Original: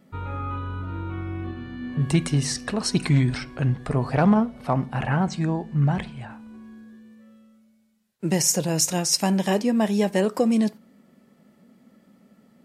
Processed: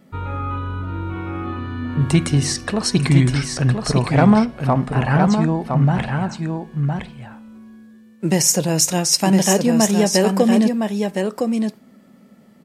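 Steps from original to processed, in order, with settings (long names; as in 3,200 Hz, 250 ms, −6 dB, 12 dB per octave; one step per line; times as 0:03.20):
single-tap delay 1,012 ms −5 dB
level +5 dB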